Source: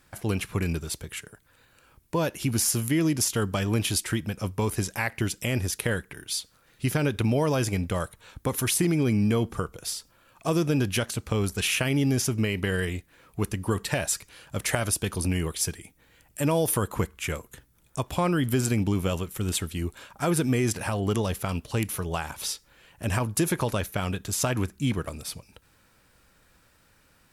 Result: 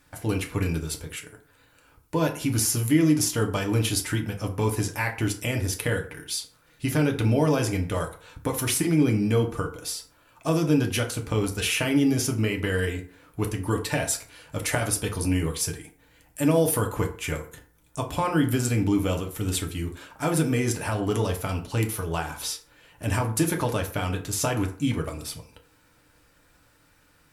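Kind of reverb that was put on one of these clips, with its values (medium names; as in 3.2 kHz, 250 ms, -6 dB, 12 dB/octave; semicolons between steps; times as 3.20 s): FDN reverb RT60 0.49 s, low-frequency decay 0.8×, high-frequency decay 0.55×, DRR 2 dB; trim -1 dB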